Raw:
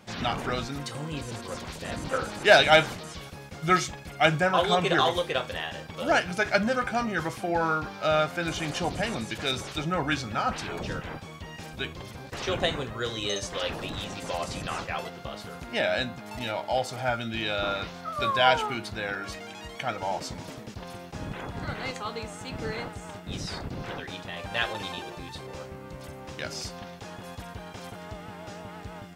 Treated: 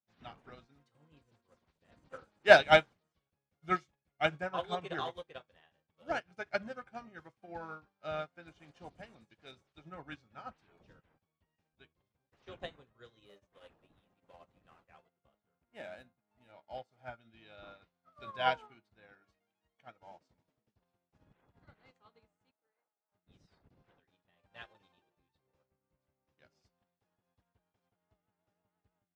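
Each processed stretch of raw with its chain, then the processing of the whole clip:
13.25–16.52 s: median filter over 9 samples + hum notches 50/100/150 Hz
22.51–23.12 s: high-pass 660 Hz + tape spacing loss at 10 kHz 39 dB
whole clip: low-pass 3.2 kHz 6 dB/octave; upward expansion 2.5:1, over -44 dBFS

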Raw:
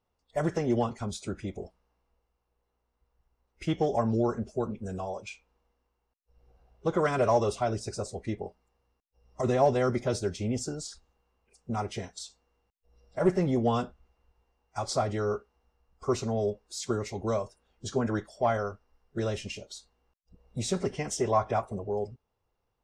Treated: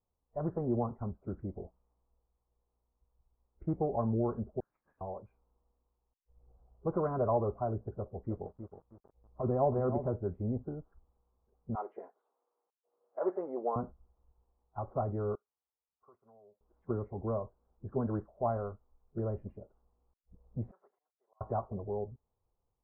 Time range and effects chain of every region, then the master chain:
4.60–5.01 s: Chebyshev high-pass 1.7 kHz, order 8 + waveshaping leveller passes 5
7.91–10.07 s: distance through air 58 m + bit-crushed delay 318 ms, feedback 35%, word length 8-bit, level -9 dB
11.75–13.76 s: high-pass 370 Hz 24 dB/octave + peaking EQ 2.9 kHz +11 dB 1.3 oct
15.35–16.61 s: differentiator + compression 4:1, threshold -50 dBFS
20.71–21.41 s: band-pass 610–3700 Hz + differentiator + slow attack 672 ms
whole clip: steep low-pass 1.2 kHz 36 dB/octave; bass shelf 140 Hz +6 dB; level rider gain up to 3 dB; trim -9 dB

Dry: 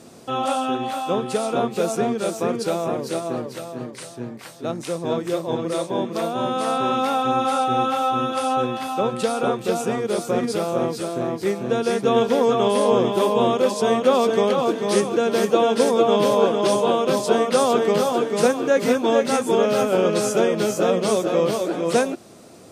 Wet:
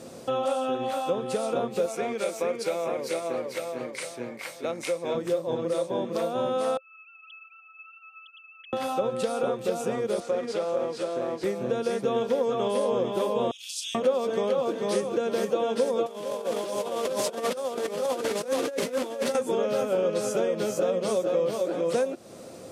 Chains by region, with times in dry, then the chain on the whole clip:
1.86–5.15 s: high-pass 450 Hz 6 dB/octave + peaking EQ 2.2 kHz +13 dB 0.23 oct
6.77–8.73 s: formants replaced by sine waves + inverse Chebyshev high-pass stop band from 710 Hz, stop band 70 dB + upward compressor, threshold -53 dBFS
10.20–11.44 s: CVSD coder 64 kbps + high-pass 450 Hz 6 dB/octave + distance through air 68 m
13.51–13.95 s: elliptic high-pass 2.8 kHz, stop band 70 dB + doubling 35 ms -7.5 dB
16.06–19.35 s: one-bit delta coder 64 kbps, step -23 dBFS + compressor with a negative ratio -24 dBFS, ratio -0.5 + high-pass 220 Hz 6 dB/octave
whole clip: peaking EQ 530 Hz +10.5 dB 0.21 oct; compression 2.5:1, threshold -28 dBFS

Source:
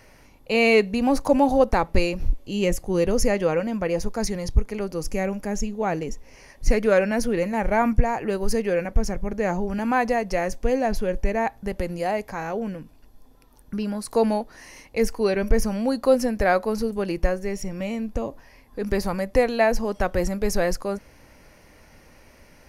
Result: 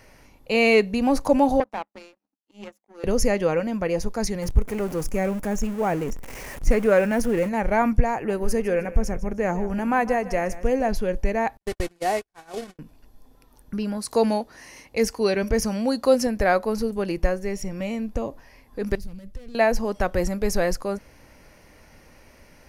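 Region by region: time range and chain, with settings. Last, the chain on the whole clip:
1.60–3.04 s: rippled Chebyshev high-pass 200 Hz, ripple 9 dB + power-law waveshaper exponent 2
4.42–7.49 s: jump at every zero crossing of -31.5 dBFS + peaking EQ 4.2 kHz -8.5 dB 0.91 oct
8.14–10.89 s: peaking EQ 4.3 kHz -8.5 dB 0.66 oct + feedback delay 152 ms, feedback 34%, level -16 dB
11.57–12.79 s: one-bit delta coder 64 kbps, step -28.5 dBFS + gate -27 dBFS, range -56 dB + comb 2.7 ms, depth 42%
13.97–16.27 s: high-pass 50 Hz + dynamic bell 5.5 kHz, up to +5 dB, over -45 dBFS, Q 0.73
18.95–19.55 s: compression 2.5:1, threshold -25 dBFS + waveshaping leveller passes 3 + amplifier tone stack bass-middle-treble 10-0-1
whole clip: none

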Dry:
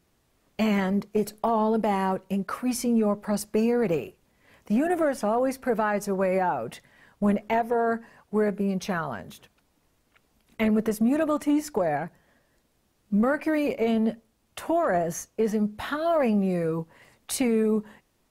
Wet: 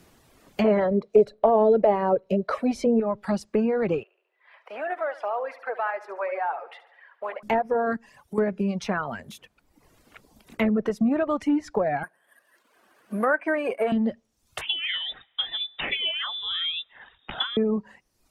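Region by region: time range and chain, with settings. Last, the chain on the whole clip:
0.64–3.00 s: peaking EQ 420 Hz +10 dB 0.3 oct + small resonant body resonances 600/4000 Hz, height 14 dB, ringing for 30 ms
4.03–7.43 s: Bessel high-pass 820 Hz, order 6 + distance through air 430 m + feedback delay 71 ms, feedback 55%, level -7.5 dB
7.96–8.38 s: treble shelf 7.6 kHz +4.5 dB + compression 3:1, threshold -40 dBFS
12.03–13.92 s: cabinet simulation 390–4600 Hz, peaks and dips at 660 Hz +4 dB, 1.1 kHz +5 dB, 1.6 kHz +10 dB, 3.8 kHz -5 dB + careless resampling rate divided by 4×, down none, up hold
14.61–17.57 s: frequency inversion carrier 3.7 kHz + feedback echo behind a band-pass 64 ms, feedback 72%, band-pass 840 Hz, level -19 dB + dynamic bell 390 Hz, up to +4 dB, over -46 dBFS, Q 0.74
whole clip: reverb removal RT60 0.82 s; low-pass that closes with the level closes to 1.8 kHz, closed at -20 dBFS; three bands compressed up and down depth 40%; trim +1.5 dB

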